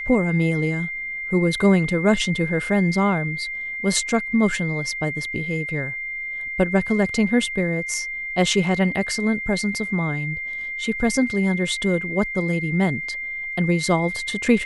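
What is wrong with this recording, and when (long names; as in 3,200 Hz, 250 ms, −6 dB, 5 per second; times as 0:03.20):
whistle 2,100 Hz −27 dBFS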